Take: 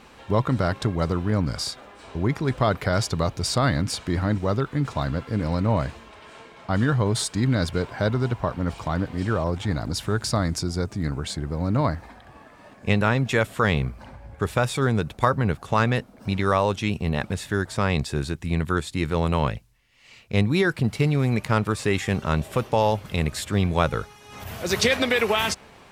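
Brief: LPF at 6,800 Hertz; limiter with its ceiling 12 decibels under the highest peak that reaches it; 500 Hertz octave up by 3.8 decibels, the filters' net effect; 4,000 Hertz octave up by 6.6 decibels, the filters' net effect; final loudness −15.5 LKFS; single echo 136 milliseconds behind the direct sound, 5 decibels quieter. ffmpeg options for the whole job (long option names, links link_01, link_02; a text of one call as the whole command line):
ffmpeg -i in.wav -af "lowpass=6800,equalizer=frequency=500:width_type=o:gain=4.5,equalizer=frequency=4000:width_type=o:gain=8.5,alimiter=limit=-14dB:level=0:latency=1,aecho=1:1:136:0.562,volume=9dB" out.wav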